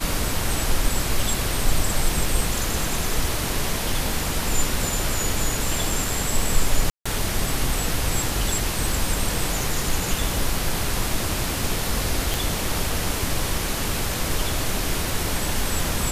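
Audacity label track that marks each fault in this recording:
6.900000	7.050000	gap 0.155 s
12.340000	12.340000	pop

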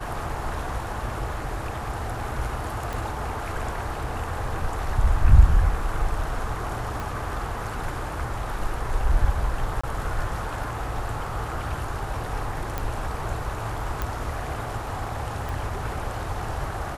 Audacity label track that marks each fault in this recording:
2.930000	2.930000	pop
7.000000	7.000000	pop
9.810000	9.840000	gap 25 ms
12.780000	12.780000	pop
14.020000	14.020000	pop -13 dBFS
15.490000	15.490000	pop

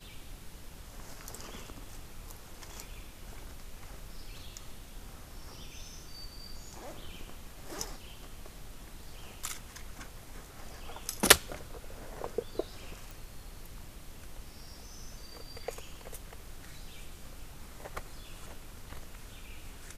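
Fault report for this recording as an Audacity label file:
13.110000	13.110000	pop

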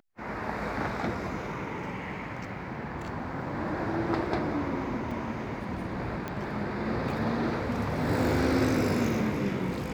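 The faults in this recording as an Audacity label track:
5.110000	5.110000	gap 4.3 ms
6.280000	6.280000	pop -20 dBFS

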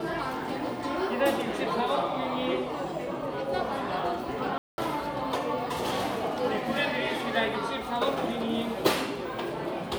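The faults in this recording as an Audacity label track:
4.580000	4.780000	gap 0.2 s

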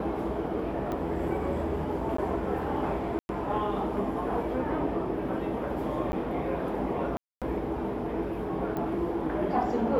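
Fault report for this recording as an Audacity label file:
0.920000	0.920000	pop -22 dBFS
2.170000	2.180000	gap 14 ms
3.190000	3.290000	gap 0.101 s
6.120000	6.130000	gap 10 ms
7.170000	7.420000	gap 0.247 s
8.770000	8.770000	pop -21 dBFS

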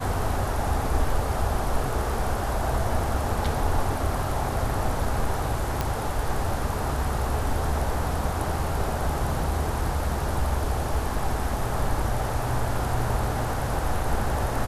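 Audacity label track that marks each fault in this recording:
5.810000	5.810000	pop -11 dBFS

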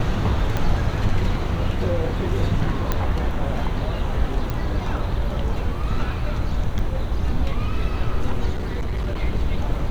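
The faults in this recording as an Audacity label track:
0.570000	0.570000	pop -11 dBFS
2.920000	2.920000	pop -8 dBFS
4.500000	4.500000	pop
6.790000	6.790000	gap 3.7 ms
8.540000	9.220000	clipped -20.5 dBFS

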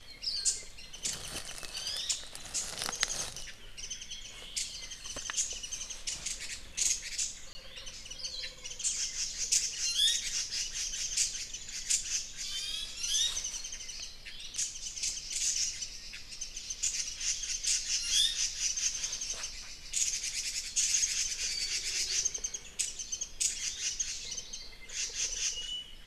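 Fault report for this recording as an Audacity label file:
7.530000	7.550000	gap 20 ms

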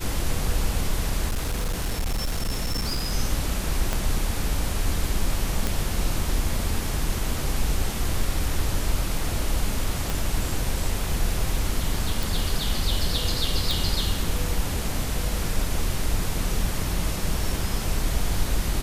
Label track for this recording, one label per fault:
1.270000	3.130000	clipped -21.5 dBFS
3.930000	3.930000	pop -10 dBFS
5.670000	5.670000	pop
10.100000	10.100000	pop
12.230000	12.230000	pop
13.710000	13.710000	pop

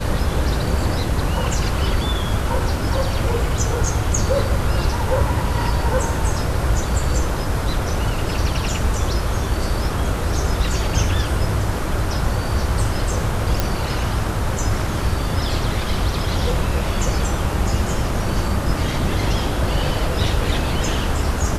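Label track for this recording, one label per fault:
13.600000	13.600000	pop

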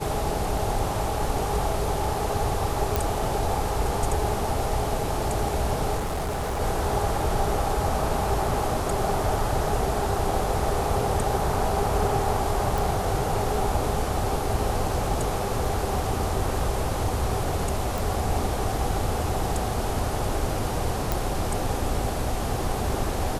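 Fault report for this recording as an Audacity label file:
2.960000	2.960000	pop
5.970000	6.610000	clipped -24.5 dBFS
12.780000	12.780000	pop
15.650000	15.650000	gap 2.5 ms
17.980000	17.980000	pop
21.120000	21.120000	pop

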